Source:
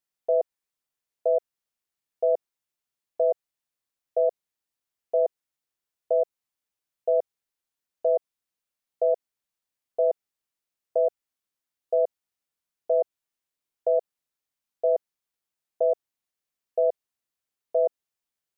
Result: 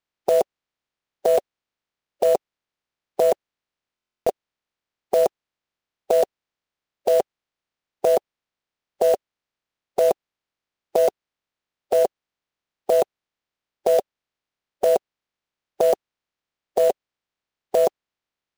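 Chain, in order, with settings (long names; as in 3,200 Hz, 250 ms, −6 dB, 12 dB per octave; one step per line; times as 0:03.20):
ceiling on every frequency bin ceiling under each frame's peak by 24 dB
high-frequency loss of the air 140 metres
floating-point word with a short mantissa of 2 bits
buffer that repeats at 0:03.94, samples 1,024, times 13
level +7 dB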